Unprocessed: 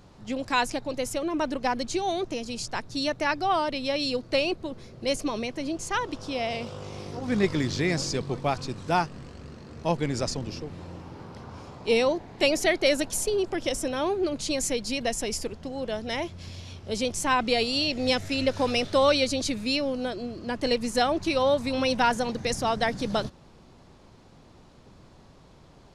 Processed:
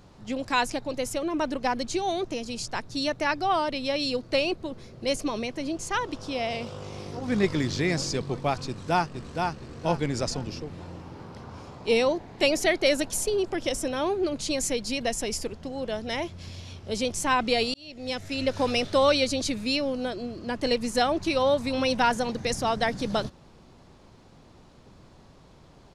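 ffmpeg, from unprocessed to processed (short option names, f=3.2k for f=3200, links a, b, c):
-filter_complex "[0:a]asplit=2[a][b];[b]afade=t=in:st=8.67:d=0.01,afade=t=out:st=9.59:d=0.01,aecho=0:1:470|940|1410|1880:0.630957|0.220835|0.0772923|0.0270523[c];[a][c]amix=inputs=2:normalize=0,asplit=2[d][e];[d]atrim=end=17.74,asetpts=PTS-STARTPTS,afade=t=out:st=17.736:d=0.004:c=hsin[f];[e]atrim=start=17.74,asetpts=PTS-STARTPTS,afade=t=in:d=0.86[g];[f][g]concat=n=2:v=0:a=1"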